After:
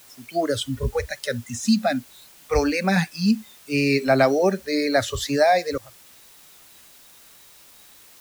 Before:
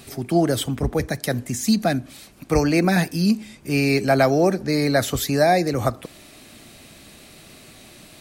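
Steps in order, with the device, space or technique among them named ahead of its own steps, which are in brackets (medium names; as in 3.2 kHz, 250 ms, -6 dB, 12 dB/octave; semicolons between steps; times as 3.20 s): spectral noise reduction 27 dB; worn cassette (low-pass 7.3 kHz; wow and flutter 27 cents; level dips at 5.78 s, 276 ms -26 dB; white noise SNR 26 dB)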